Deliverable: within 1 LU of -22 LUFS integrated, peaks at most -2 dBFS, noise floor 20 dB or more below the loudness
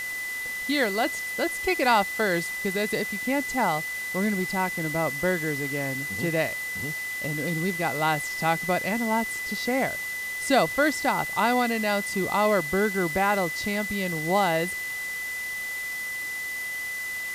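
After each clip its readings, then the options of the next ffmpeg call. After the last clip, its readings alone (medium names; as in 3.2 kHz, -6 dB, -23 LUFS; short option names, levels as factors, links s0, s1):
steady tone 2 kHz; tone level -30 dBFS; noise floor -33 dBFS; noise floor target -46 dBFS; loudness -26.0 LUFS; peak level -8.5 dBFS; loudness target -22.0 LUFS
-> -af "bandreject=f=2000:w=30"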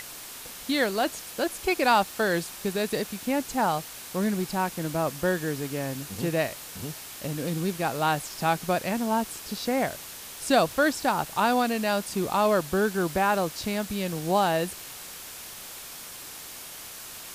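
steady tone not found; noise floor -42 dBFS; noise floor target -47 dBFS
-> -af "afftdn=nr=6:nf=-42"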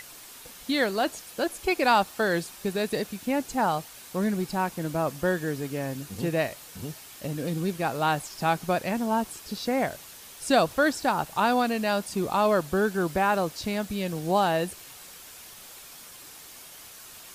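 noise floor -46 dBFS; noise floor target -47 dBFS
-> -af "afftdn=nr=6:nf=-46"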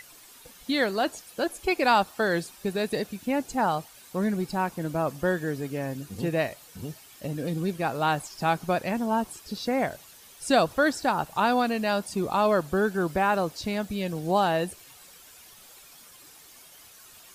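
noise floor -51 dBFS; loudness -27.0 LUFS; peak level -9.0 dBFS; loudness target -22.0 LUFS
-> -af "volume=1.78"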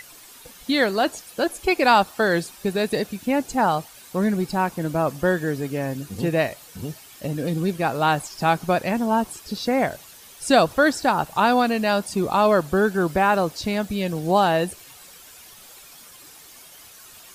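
loudness -22.0 LUFS; peak level -4.0 dBFS; noise floor -46 dBFS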